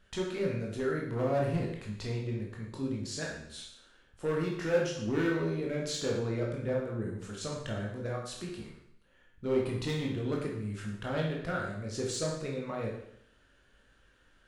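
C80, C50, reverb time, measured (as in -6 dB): 6.5 dB, 3.5 dB, 0.70 s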